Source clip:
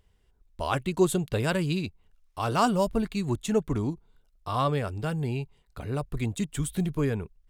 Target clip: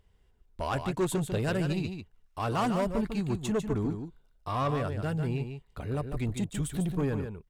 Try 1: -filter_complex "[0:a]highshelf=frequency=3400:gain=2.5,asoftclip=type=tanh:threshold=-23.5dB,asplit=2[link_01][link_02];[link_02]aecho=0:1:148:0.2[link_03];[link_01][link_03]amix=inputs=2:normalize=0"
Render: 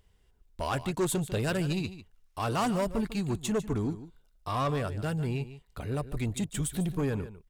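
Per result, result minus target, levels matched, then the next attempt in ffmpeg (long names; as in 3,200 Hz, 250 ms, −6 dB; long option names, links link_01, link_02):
8,000 Hz band +5.0 dB; echo-to-direct −6.5 dB
-filter_complex "[0:a]highshelf=frequency=3400:gain=-4.5,asoftclip=type=tanh:threshold=-23.5dB,asplit=2[link_01][link_02];[link_02]aecho=0:1:148:0.2[link_03];[link_01][link_03]amix=inputs=2:normalize=0"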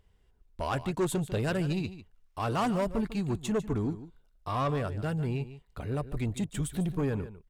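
echo-to-direct −6.5 dB
-filter_complex "[0:a]highshelf=frequency=3400:gain=-4.5,asoftclip=type=tanh:threshold=-23.5dB,asplit=2[link_01][link_02];[link_02]aecho=0:1:148:0.422[link_03];[link_01][link_03]amix=inputs=2:normalize=0"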